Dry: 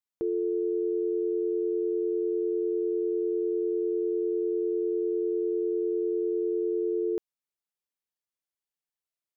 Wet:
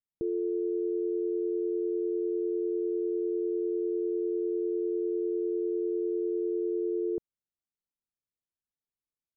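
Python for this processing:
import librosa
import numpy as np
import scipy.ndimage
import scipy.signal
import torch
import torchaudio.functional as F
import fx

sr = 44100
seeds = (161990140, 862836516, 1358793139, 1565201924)

y = scipy.signal.sosfilt(scipy.signal.bessel(2, 570.0, 'lowpass', norm='mag', fs=sr, output='sos'), x)
y = fx.low_shelf(y, sr, hz=420.0, db=11.5)
y = y * 10.0 ** (-7.0 / 20.0)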